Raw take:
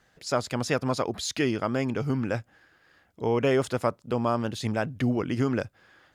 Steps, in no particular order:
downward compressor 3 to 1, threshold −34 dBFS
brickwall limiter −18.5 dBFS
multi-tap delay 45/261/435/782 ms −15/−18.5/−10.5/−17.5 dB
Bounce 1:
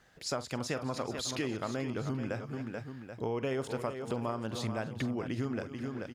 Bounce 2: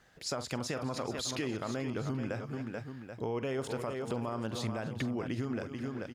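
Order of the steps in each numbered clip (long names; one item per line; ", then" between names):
multi-tap delay, then downward compressor, then brickwall limiter
multi-tap delay, then brickwall limiter, then downward compressor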